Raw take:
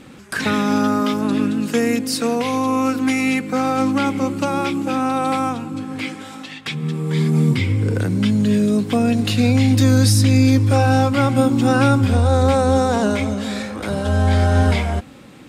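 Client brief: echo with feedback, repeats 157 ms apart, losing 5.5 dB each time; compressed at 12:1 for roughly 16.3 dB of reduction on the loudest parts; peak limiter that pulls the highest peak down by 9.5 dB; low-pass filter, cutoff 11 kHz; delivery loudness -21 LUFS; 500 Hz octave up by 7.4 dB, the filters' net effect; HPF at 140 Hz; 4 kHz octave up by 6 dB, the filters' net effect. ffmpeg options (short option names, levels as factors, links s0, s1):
-af "highpass=140,lowpass=11000,equalizer=f=500:t=o:g=8,equalizer=f=4000:t=o:g=7.5,acompressor=threshold=0.0631:ratio=12,alimiter=limit=0.0841:level=0:latency=1,aecho=1:1:157|314|471|628|785|942|1099:0.531|0.281|0.149|0.079|0.0419|0.0222|0.0118,volume=2.37"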